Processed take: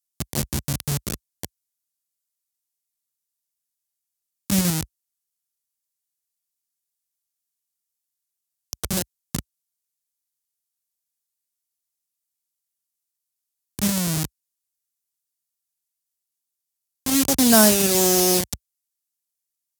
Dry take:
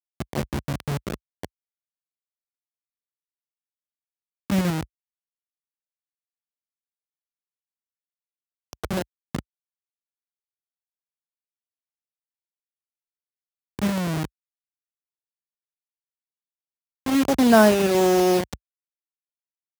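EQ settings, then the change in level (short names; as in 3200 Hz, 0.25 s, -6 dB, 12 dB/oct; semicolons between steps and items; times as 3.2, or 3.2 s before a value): tone controls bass +7 dB, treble +9 dB; bell 12000 Hz +11.5 dB 2.7 oct; -4.5 dB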